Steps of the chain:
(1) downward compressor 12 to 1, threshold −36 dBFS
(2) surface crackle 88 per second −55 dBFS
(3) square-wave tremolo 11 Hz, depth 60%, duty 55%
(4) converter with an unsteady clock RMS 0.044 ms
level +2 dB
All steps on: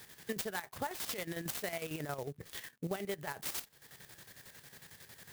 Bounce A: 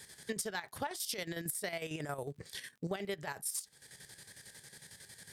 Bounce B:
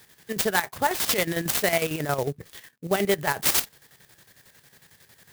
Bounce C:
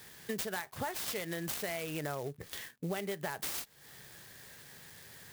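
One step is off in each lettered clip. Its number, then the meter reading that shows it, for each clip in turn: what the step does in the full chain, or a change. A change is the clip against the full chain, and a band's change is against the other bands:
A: 4, 8 kHz band +4.5 dB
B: 1, average gain reduction 8.0 dB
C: 3, change in crest factor −2.0 dB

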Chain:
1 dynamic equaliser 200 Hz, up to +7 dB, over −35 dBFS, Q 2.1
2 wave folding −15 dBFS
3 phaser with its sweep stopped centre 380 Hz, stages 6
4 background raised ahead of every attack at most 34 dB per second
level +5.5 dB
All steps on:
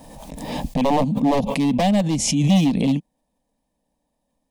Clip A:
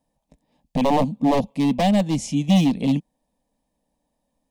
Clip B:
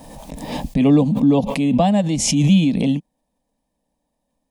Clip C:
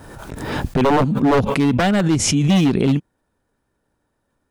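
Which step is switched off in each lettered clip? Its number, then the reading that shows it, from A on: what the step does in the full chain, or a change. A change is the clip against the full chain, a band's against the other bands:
4, change in momentary loudness spread −7 LU
2, distortion level −2 dB
3, change in momentary loudness spread −2 LU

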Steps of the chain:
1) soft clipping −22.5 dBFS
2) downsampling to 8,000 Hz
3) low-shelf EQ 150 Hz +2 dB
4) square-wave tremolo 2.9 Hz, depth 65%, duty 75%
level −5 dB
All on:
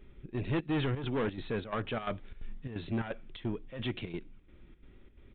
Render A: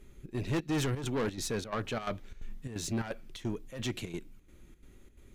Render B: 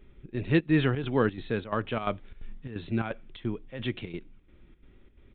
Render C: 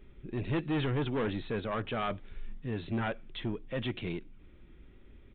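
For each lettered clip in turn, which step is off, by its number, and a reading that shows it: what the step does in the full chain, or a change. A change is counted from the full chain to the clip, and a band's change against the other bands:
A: 2, 4 kHz band +2.5 dB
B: 1, distortion level −6 dB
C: 4, change in momentary loudness spread −2 LU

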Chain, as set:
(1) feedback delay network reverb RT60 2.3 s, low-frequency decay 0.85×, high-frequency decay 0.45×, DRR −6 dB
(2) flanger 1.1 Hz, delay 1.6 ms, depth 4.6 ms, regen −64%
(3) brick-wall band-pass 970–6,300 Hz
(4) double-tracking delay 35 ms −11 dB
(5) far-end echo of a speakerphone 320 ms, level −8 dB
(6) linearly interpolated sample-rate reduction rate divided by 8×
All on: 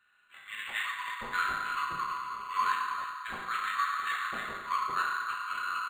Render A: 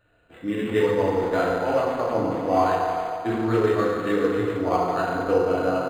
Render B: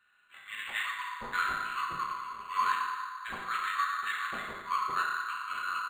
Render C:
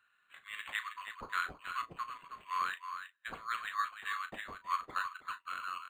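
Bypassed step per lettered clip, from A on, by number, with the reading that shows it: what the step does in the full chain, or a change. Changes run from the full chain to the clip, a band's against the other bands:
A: 3, 500 Hz band +29.5 dB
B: 5, change in momentary loudness spread +2 LU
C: 1, change in crest factor +3.5 dB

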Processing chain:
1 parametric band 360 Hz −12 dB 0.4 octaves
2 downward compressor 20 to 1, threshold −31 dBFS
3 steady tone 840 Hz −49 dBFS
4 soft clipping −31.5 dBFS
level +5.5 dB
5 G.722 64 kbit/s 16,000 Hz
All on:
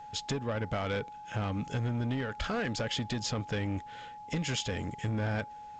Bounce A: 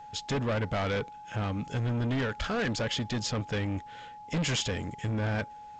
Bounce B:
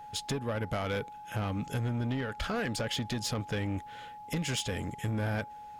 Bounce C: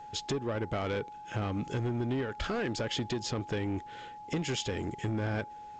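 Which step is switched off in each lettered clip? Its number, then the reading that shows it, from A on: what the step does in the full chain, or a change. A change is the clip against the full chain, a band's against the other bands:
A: 2, average gain reduction 4.5 dB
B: 5, 8 kHz band +1.5 dB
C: 1, 500 Hz band +3.0 dB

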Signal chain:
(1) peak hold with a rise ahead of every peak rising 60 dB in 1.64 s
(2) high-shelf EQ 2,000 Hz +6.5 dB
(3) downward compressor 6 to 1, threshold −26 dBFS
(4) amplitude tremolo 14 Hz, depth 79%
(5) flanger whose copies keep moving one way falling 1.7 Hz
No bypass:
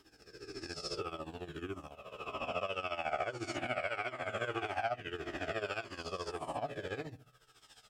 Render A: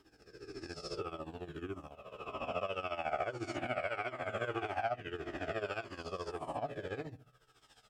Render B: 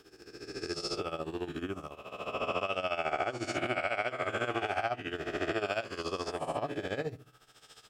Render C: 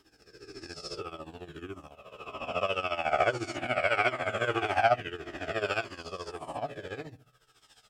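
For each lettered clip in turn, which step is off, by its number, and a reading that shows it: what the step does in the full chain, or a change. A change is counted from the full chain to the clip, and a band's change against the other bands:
2, 8 kHz band −5.5 dB
5, change in integrated loudness +4.5 LU
3, average gain reduction 3.5 dB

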